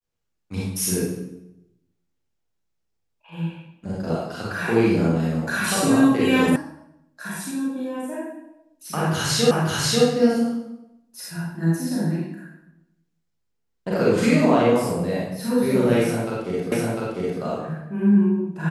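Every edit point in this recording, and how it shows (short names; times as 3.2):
6.56 sound cut off
9.51 repeat of the last 0.54 s
16.72 repeat of the last 0.7 s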